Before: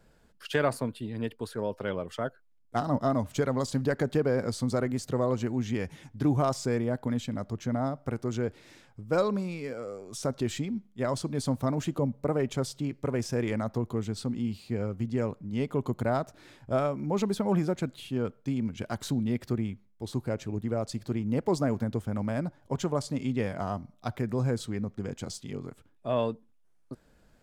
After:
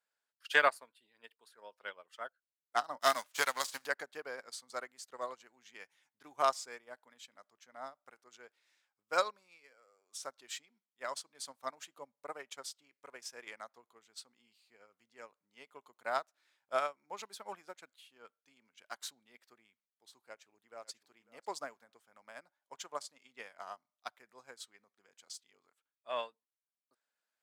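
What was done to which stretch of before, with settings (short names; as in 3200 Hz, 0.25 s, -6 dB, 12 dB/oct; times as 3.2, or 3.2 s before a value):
3–3.86 spectral whitening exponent 0.6
20.26–20.9 echo throw 0.55 s, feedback 15%, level -10.5 dB
whole clip: HPF 1100 Hz 12 dB/oct; upward expander 2.5:1, over -48 dBFS; gain +8.5 dB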